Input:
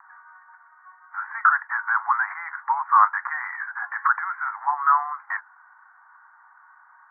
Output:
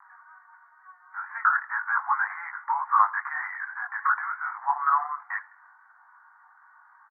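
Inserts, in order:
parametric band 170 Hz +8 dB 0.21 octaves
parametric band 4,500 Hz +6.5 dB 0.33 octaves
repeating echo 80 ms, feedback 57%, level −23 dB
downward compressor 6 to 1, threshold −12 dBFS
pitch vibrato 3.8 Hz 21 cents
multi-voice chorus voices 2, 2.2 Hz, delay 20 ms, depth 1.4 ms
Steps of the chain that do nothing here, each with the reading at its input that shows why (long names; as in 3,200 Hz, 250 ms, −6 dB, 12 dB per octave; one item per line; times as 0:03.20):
parametric band 170 Hz: nothing at its input below 680 Hz
parametric band 4,500 Hz: nothing at its input above 2,200 Hz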